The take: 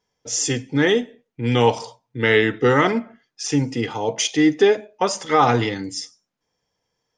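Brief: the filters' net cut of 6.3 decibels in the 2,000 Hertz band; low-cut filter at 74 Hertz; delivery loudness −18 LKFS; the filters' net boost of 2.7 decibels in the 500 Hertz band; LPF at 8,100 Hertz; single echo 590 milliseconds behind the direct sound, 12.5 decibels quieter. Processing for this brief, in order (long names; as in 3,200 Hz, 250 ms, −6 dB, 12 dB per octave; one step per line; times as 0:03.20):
high-pass filter 74 Hz
low-pass filter 8,100 Hz
parametric band 500 Hz +3.5 dB
parametric band 2,000 Hz −7.5 dB
single-tap delay 590 ms −12.5 dB
level +1 dB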